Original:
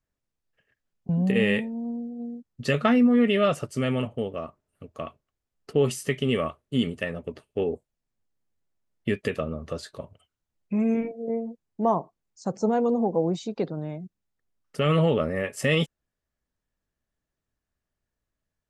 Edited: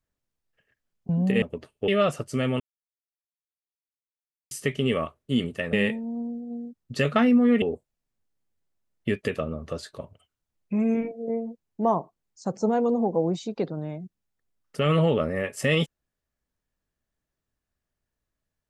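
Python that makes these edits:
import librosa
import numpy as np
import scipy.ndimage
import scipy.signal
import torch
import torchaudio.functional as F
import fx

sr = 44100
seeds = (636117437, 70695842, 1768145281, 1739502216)

y = fx.edit(x, sr, fx.swap(start_s=1.42, length_s=1.89, other_s=7.16, other_length_s=0.46),
    fx.silence(start_s=4.03, length_s=1.91), tone=tone)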